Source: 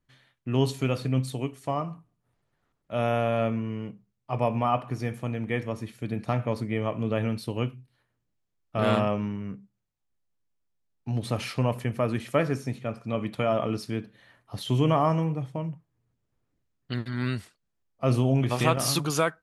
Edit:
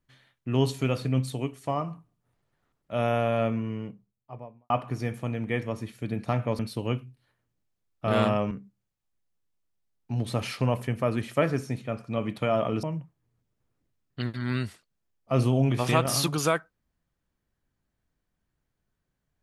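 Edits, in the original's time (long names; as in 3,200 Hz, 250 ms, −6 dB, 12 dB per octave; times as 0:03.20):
0:03.65–0:04.70: fade out and dull
0:06.59–0:07.30: remove
0:09.22–0:09.48: remove
0:13.80–0:15.55: remove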